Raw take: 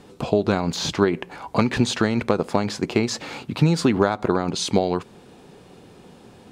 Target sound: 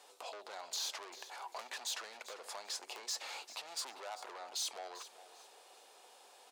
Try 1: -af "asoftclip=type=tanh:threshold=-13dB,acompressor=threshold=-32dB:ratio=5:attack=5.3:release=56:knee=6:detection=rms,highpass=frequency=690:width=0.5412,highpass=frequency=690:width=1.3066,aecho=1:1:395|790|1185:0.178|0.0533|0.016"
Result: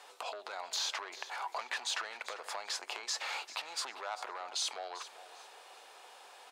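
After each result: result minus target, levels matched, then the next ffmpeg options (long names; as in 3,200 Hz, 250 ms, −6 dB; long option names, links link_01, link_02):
soft clipping: distortion −7 dB; 2,000 Hz band +4.0 dB
-af "asoftclip=type=tanh:threshold=-23dB,acompressor=threshold=-32dB:ratio=5:attack=5.3:release=56:knee=6:detection=rms,highpass=frequency=690:width=0.5412,highpass=frequency=690:width=1.3066,aecho=1:1:395|790|1185:0.178|0.0533|0.016"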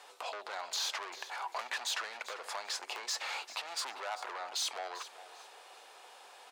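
2,000 Hz band +4.0 dB
-af "asoftclip=type=tanh:threshold=-23dB,acompressor=threshold=-32dB:ratio=5:attack=5.3:release=56:knee=6:detection=rms,highpass=frequency=690:width=0.5412,highpass=frequency=690:width=1.3066,equalizer=frequency=1600:width_type=o:width=2.6:gain=-9.5,aecho=1:1:395|790|1185:0.178|0.0533|0.016"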